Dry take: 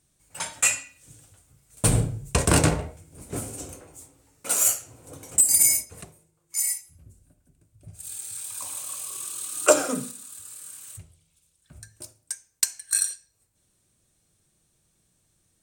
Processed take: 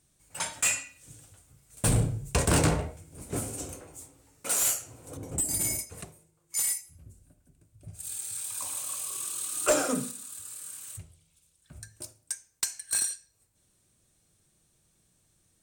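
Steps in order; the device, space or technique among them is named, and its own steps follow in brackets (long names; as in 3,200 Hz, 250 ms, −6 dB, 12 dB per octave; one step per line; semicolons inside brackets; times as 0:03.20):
0:05.17–0:05.79: tilt shelving filter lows +9.5 dB, about 880 Hz
saturation between pre-emphasis and de-emphasis (high-shelf EQ 9,000 Hz +9.5 dB; soft clipping −16.5 dBFS, distortion −9 dB; high-shelf EQ 9,000 Hz −9.5 dB)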